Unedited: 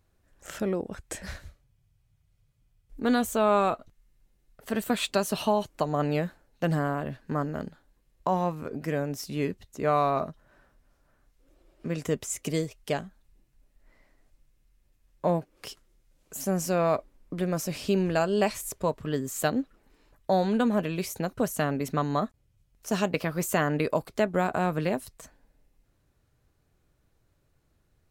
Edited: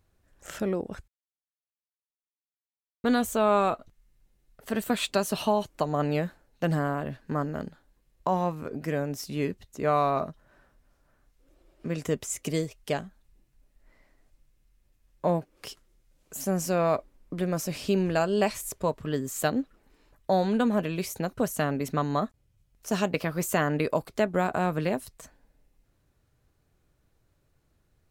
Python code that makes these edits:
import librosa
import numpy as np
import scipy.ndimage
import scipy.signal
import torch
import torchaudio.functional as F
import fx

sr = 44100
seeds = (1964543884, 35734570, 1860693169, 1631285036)

y = fx.edit(x, sr, fx.silence(start_s=1.08, length_s=1.96), tone=tone)